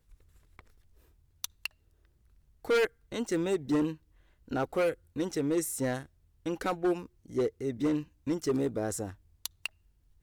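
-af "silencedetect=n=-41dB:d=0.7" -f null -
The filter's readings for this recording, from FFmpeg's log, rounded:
silence_start: 0.59
silence_end: 1.44 | silence_duration: 0.85
silence_start: 1.66
silence_end: 2.65 | silence_duration: 0.98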